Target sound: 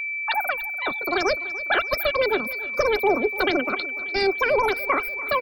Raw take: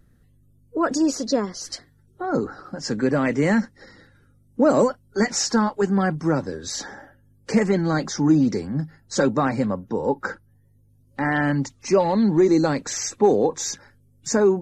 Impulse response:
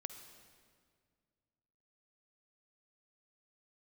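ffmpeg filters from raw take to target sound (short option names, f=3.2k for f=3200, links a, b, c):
-filter_complex "[0:a]afftdn=nr=24:nf=-29,lowpass=5.5k,aeval=exprs='val(0)+0.0631*sin(2*PI*860*n/s)':c=same,asubboost=boost=9.5:cutoff=97,asetrate=119070,aresample=44100,asplit=2[a][b];[b]aecho=0:1:293|586|879|1172|1465:0.126|0.0692|0.0381|0.0209|0.0115[c];[a][c]amix=inputs=2:normalize=0,volume=-2dB"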